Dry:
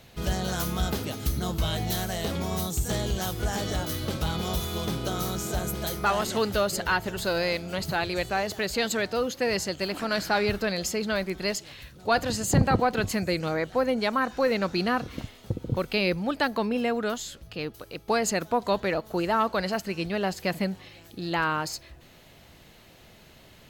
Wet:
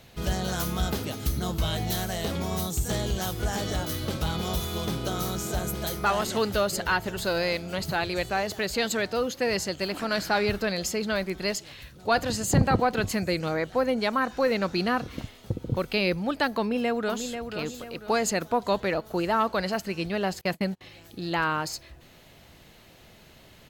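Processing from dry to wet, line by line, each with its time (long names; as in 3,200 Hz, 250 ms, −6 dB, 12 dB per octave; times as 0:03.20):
0:16.59–0:17.39: delay throw 490 ms, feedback 40%, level −8 dB
0:20.41–0:20.81: noise gate −34 dBFS, range −29 dB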